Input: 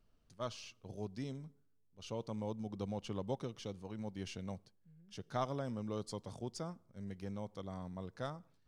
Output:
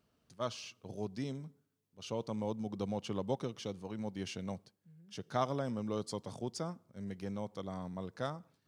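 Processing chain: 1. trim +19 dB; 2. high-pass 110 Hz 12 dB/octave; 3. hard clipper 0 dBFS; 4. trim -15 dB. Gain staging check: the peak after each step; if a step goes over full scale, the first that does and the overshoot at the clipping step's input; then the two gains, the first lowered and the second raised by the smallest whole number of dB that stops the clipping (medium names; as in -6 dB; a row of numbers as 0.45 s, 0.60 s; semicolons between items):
-4.5 dBFS, -3.5 dBFS, -3.5 dBFS, -18.5 dBFS; nothing clips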